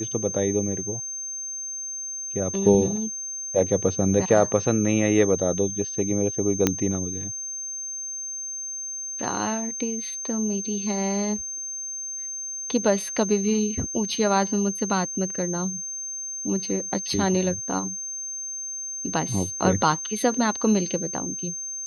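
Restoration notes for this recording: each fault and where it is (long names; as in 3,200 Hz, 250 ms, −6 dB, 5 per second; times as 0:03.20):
whistle 6,300 Hz −30 dBFS
0:06.67: click −4 dBFS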